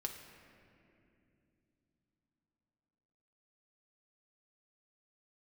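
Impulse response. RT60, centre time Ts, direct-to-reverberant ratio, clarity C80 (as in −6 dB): 2.8 s, 48 ms, 2.0 dB, 7.0 dB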